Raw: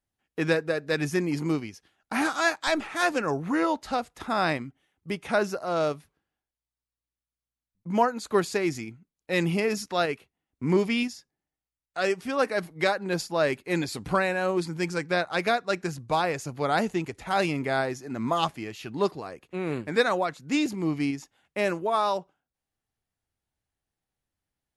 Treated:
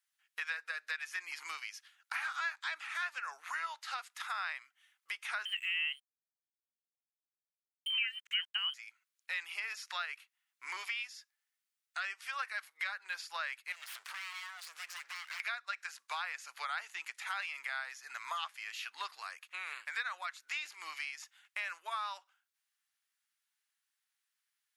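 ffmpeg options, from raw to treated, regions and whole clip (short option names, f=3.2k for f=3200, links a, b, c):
-filter_complex "[0:a]asettb=1/sr,asplit=3[a][b][c];[a]atrim=end=5.454[d];[b]atrim=start=5.45:end=8.74,asetpts=PTS-STARTPTS,afade=t=in:d=0.004:c=qsin,afade=t=out:st=3.286:d=0.004:c=qsin,lowpass=f=2.8k:t=q:w=0.5098,lowpass=f=2.8k:t=q:w=0.6013,lowpass=f=2.8k:t=q:w=0.9,lowpass=f=2.8k:t=q:w=2.563,afreqshift=-3300,acontrast=23,aeval=exprs='sgn(val(0))*max(abs(val(0))-0.00891,0)':c=same[e];[c]atrim=start=8.736[f];[d][e]acrossfade=d=0.004:c1=hsin:c2=qsin[g];[g][f]acrossfade=d=0.004:c1=qsin:c2=hsin,asettb=1/sr,asplit=3[h][i][j];[h]atrim=end=13.724[k];[i]atrim=start=13.72:end=15.4,asetpts=PTS-STARTPTS,afade=t=in:d=0.004:c=qsin,afade=t=out:st=1.676:d=0.004:c=qsin,acompressor=threshold=-34dB:ratio=16:attack=3.2:release=140:knee=1:detection=peak,highpass=120,aeval=exprs='abs(val(0))':c=same[l];[j]atrim=start=15.396[m];[k][l]acrossfade=d=0.004:c1=hsin:c2=qsin[n];[n][m]acrossfade=d=0.004:c1=qsin:c2=hsin,acrossover=split=3600[o][p];[p]acompressor=threshold=-49dB:ratio=4:attack=1:release=60[q];[o][q]amix=inputs=2:normalize=0,highpass=f=1.3k:w=0.5412,highpass=f=1.3k:w=1.3066,acompressor=threshold=-44dB:ratio=3,volume=5dB"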